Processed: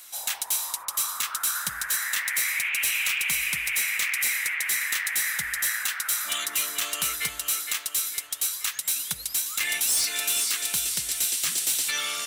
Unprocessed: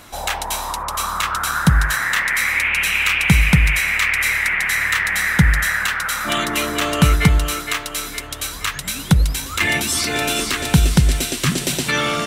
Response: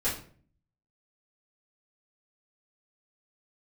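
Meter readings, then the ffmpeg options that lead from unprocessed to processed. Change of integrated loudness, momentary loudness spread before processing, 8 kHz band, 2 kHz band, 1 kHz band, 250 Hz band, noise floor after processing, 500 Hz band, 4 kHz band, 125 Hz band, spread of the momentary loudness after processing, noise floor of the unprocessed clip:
-7.0 dB, 9 LU, +0.5 dB, -10.0 dB, -15.0 dB, -29.5 dB, -42 dBFS, -20.5 dB, -6.0 dB, -34.0 dB, 4 LU, -32 dBFS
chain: -af "aderivative,acontrast=43,asoftclip=type=hard:threshold=-15.5dB,volume=-4.5dB"

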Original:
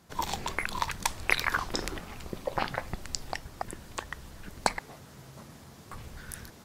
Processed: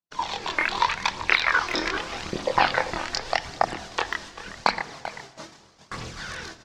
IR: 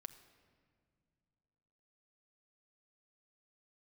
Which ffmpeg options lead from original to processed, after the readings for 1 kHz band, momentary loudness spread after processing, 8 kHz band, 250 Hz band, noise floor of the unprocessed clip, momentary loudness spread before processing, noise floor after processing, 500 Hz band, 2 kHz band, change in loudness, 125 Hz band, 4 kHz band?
+9.0 dB, 16 LU, -0.5 dB, +5.5 dB, -52 dBFS, 21 LU, -55 dBFS, +8.0 dB, +8.5 dB, +8.0 dB, +0.5 dB, +8.5 dB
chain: -filter_complex "[0:a]acrossover=split=4200[a][b];[b]acompressor=threshold=-49dB:ratio=4:attack=1:release=60[c];[a][c]amix=inputs=2:normalize=0,lowpass=f=5.8k:w=0.5412,lowpass=f=5.8k:w=1.3066,aemphasis=mode=production:type=bsi,asplit=2[d][e];[e]adelay=25,volume=-2dB[f];[d][f]amix=inputs=2:normalize=0,asplit=2[g][h];[h]adelay=390,highpass=300,lowpass=3.4k,asoftclip=type=hard:threshold=-13.5dB,volume=-12dB[i];[g][i]amix=inputs=2:normalize=0,agate=range=-41dB:threshold=-48dB:ratio=16:detection=peak,dynaudnorm=f=150:g=7:m=9dB,aphaser=in_gain=1:out_gain=1:delay=3.4:decay=0.43:speed=0.83:type=triangular,asplit=2[j][k];[1:a]atrim=start_sample=2205[l];[k][l]afir=irnorm=-1:irlink=0,volume=7.5dB[m];[j][m]amix=inputs=2:normalize=0,volume=-7dB"

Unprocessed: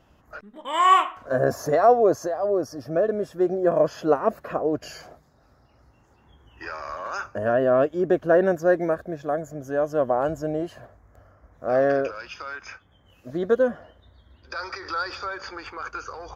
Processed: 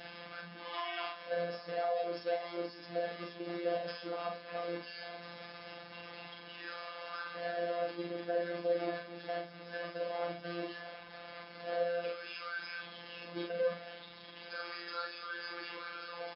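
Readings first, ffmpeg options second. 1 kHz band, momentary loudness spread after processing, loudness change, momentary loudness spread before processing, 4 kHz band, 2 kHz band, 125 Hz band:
-16.5 dB, 12 LU, -16.0 dB, 16 LU, n/a, -9.0 dB, -17.5 dB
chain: -af "aeval=exprs='val(0)+0.5*0.0841*sgn(val(0))':c=same,agate=range=-13dB:threshold=-21dB:ratio=16:detection=peak,acompressor=threshold=-19dB:ratio=4,asuperstop=centerf=1100:order=20:qfactor=6.9,bandreject=f=60:t=h:w=6,bandreject=f=120:t=h:w=6,bandreject=f=180:t=h:w=6,bandreject=f=240:t=h:w=6,bandreject=f=300:t=h:w=6,bandreject=f=360:t=h:w=6,bandreject=f=420:t=h:w=6,bandreject=f=480:t=h:w=6,alimiter=limit=-22.5dB:level=0:latency=1:release=340,aecho=1:1:30|45|68:0.141|0.631|0.251,afftfilt=real='hypot(re,im)*cos(PI*b)':imag='0':win_size=1024:overlap=0.75,highpass=100,lowshelf=f=400:g=-8,aecho=1:1:4:0.47,volume=-2dB" -ar 12000 -c:a libmp3lame -b:a 24k

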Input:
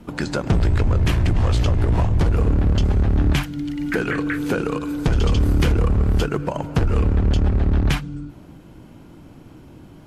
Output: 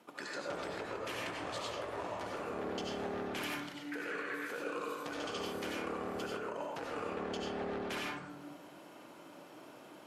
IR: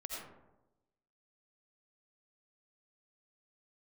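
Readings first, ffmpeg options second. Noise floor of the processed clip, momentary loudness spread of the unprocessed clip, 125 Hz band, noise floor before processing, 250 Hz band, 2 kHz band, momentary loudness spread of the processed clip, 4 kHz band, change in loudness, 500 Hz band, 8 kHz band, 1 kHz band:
-54 dBFS, 7 LU, -34.5 dB, -44 dBFS, -19.5 dB, -11.0 dB, 15 LU, -11.0 dB, -19.5 dB, -12.0 dB, -11.5 dB, -9.5 dB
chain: -filter_complex "[0:a]highpass=540,areverse,acompressor=threshold=-36dB:ratio=6,areverse[a];[1:a]atrim=start_sample=2205,asetrate=41013,aresample=44100[b];[a][b]afir=irnorm=-1:irlink=0"

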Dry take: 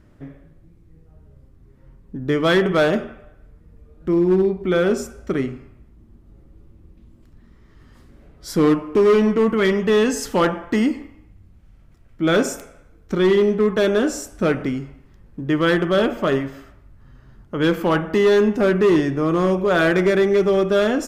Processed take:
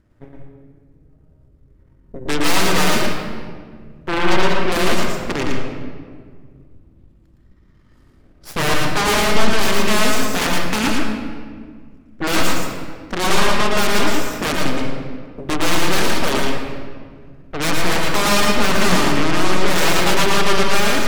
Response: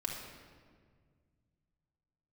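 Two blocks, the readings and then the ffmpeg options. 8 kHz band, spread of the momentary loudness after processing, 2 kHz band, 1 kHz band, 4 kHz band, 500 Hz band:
+11.5 dB, 15 LU, +5.5 dB, +7.0 dB, +10.5 dB, -5.0 dB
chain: -filter_complex "[0:a]aeval=exprs='0.316*(cos(1*acos(clip(val(0)/0.316,-1,1)))-cos(1*PI/2))+0.0501*(cos(2*acos(clip(val(0)/0.316,-1,1)))-cos(2*PI/2))+0.112*(cos(3*acos(clip(val(0)/0.316,-1,1)))-cos(3*PI/2))+0.0126*(cos(5*acos(clip(val(0)/0.316,-1,1)))-cos(5*PI/2))+0.0251*(cos(8*acos(clip(val(0)/0.316,-1,1)))-cos(8*PI/2))':c=same,aeval=exprs='0.531*sin(PI/2*5.62*val(0)/0.531)':c=same,asplit=2[a][b];[1:a]atrim=start_sample=2205,adelay=113[c];[b][c]afir=irnorm=-1:irlink=0,volume=-1.5dB[d];[a][d]amix=inputs=2:normalize=0,volume=-9.5dB"

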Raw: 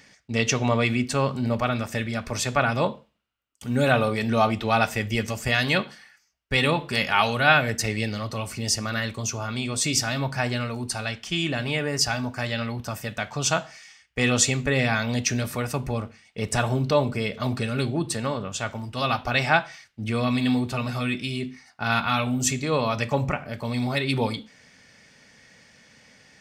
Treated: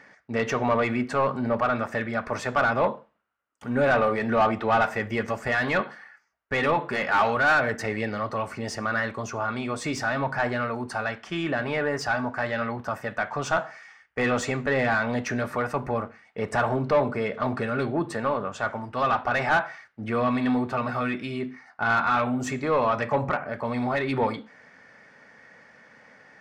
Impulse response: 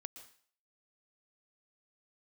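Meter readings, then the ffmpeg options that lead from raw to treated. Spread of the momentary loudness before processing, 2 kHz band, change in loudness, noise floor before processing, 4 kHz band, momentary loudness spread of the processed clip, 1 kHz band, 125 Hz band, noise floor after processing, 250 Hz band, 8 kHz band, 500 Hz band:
9 LU, 0.0 dB, -1.0 dB, -60 dBFS, -10.5 dB, 8 LU, +2.0 dB, -6.5 dB, -59 dBFS, -2.0 dB, -14.5 dB, +1.5 dB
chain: -filter_complex "[0:a]highshelf=f=2.2k:t=q:w=1.5:g=-7.5,asplit=2[a][b];[b]highpass=f=720:p=1,volume=21dB,asoftclip=type=tanh:threshold=-3.5dB[c];[a][c]amix=inputs=2:normalize=0,lowpass=f=1.3k:p=1,volume=-6dB,volume=-6.5dB"

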